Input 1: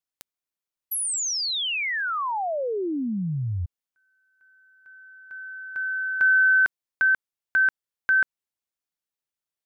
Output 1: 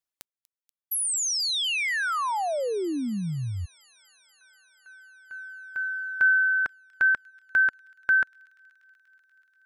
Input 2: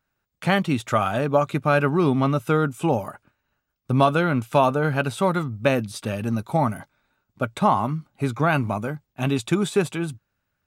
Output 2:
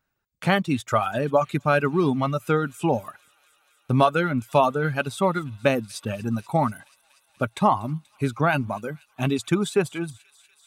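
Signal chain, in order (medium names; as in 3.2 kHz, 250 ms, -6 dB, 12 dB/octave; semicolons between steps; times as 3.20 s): reverb removal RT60 1.6 s; on a send: feedback echo behind a high-pass 241 ms, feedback 81%, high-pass 3.5 kHz, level -18.5 dB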